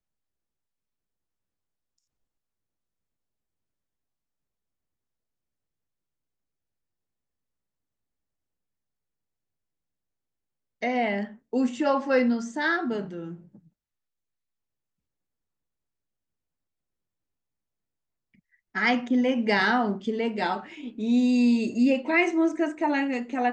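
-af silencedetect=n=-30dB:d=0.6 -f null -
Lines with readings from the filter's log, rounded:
silence_start: 0.00
silence_end: 10.82 | silence_duration: 10.82
silence_start: 13.28
silence_end: 18.75 | silence_duration: 5.47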